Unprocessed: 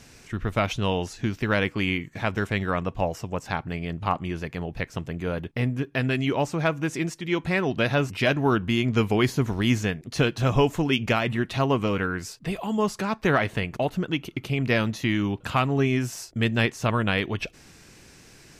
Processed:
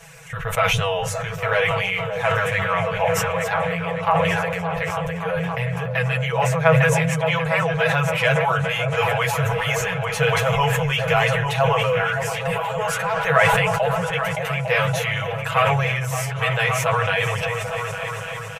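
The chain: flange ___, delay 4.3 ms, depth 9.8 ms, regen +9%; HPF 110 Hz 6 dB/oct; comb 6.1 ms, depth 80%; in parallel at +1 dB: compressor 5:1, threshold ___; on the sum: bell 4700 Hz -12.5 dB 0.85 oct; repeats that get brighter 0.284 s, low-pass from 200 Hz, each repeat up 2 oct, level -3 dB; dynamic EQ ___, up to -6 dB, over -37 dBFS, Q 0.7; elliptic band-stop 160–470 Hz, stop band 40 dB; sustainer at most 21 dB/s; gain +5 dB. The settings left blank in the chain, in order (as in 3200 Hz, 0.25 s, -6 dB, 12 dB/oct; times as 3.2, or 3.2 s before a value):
0.51 Hz, -35 dBFS, 150 Hz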